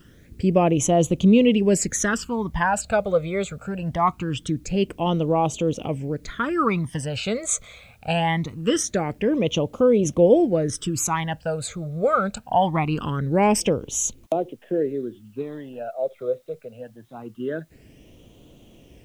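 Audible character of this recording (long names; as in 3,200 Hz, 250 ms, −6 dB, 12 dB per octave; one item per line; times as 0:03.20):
phaser sweep stages 12, 0.23 Hz, lowest notch 290–1,700 Hz
a quantiser's noise floor 12 bits, dither triangular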